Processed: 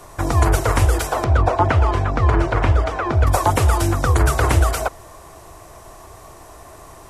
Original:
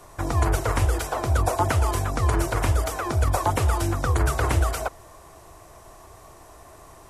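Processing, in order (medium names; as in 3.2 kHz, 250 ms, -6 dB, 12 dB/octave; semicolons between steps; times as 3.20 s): 1.24–3.27 s: low-pass 3 kHz 12 dB/octave; trim +6 dB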